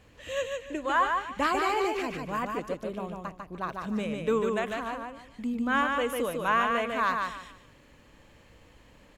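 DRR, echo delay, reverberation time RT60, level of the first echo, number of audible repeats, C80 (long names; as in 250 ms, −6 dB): no reverb audible, 148 ms, no reverb audible, −4.0 dB, 3, no reverb audible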